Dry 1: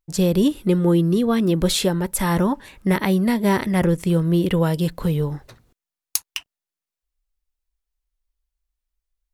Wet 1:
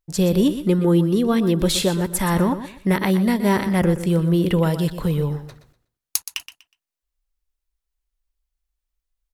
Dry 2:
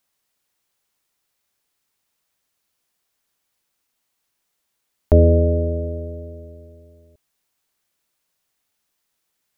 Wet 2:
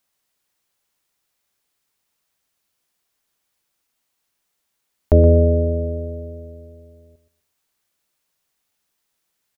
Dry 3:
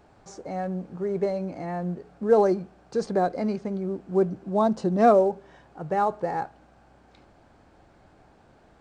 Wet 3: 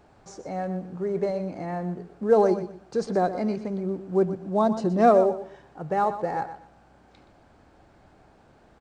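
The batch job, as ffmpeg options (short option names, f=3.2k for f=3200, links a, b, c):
-af "aecho=1:1:122|244|366:0.251|0.0603|0.0145"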